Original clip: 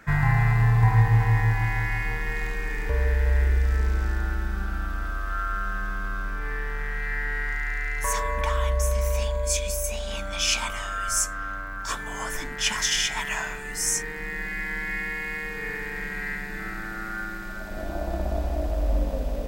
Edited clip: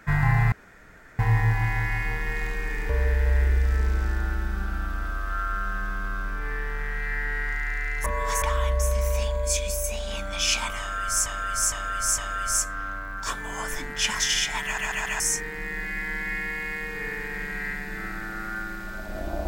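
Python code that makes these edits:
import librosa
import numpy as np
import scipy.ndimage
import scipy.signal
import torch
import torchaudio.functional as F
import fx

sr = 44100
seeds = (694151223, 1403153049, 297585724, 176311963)

y = fx.edit(x, sr, fx.room_tone_fill(start_s=0.52, length_s=0.67),
    fx.reverse_span(start_s=8.06, length_s=0.36),
    fx.repeat(start_s=10.8, length_s=0.46, count=4),
    fx.stutter_over(start_s=13.26, slice_s=0.14, count=4), tone=tone)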